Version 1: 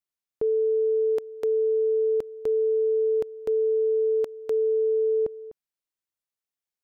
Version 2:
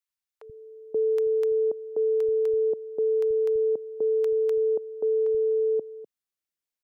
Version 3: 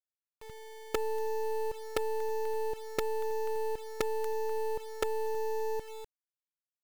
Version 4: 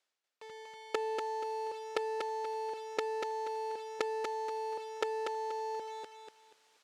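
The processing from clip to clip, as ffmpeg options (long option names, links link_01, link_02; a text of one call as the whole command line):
ffmpeg -i in.wav -filter_complex "[0:a]acrossover=split=150|830[link_01][link_02][link_03];[link_01]adelay=80[link_04];[link_02]adelay=530[link_05];[link_04][link_05][link_03]amix=inputs=3:normalize=0" out.wav
ffmpeg -i in.wav -af "acompressor=threshold=-28dB:ratio=4,acrusher=bits=5:dc=4:mix=0:aa=0.000001" out.wav
ffmpeg -i in.wav -af "areverse,acompressor=mode=upward:threshold=-40dB:ratio=2.5,areverse,highpass=370,lowpass=5700,aecho=1:1:240|480|720|960:0.596|0.167|0.0467|0.0131" out.wav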